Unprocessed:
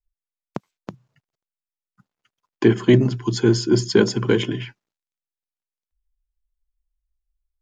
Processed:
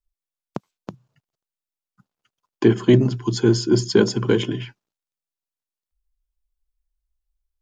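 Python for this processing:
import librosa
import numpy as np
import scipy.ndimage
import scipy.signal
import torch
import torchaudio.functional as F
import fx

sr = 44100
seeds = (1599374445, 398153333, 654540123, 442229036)

y = fx.peak_eq(x, sr, hz=2000.0, db=-4.5, octaves=0.66)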